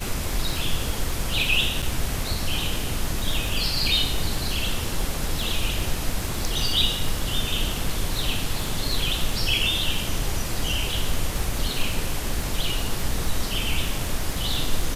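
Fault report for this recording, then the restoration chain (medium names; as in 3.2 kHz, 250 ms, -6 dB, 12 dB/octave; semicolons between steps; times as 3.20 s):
crackle 32 per s -27 dBFS
1.82–1.83 s: dropout 6.7 ms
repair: de-click; interpolate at 1.82 s, 6.7 ms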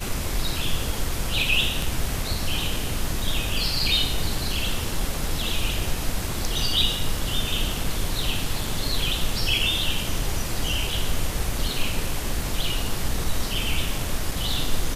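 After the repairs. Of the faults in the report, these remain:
nothing left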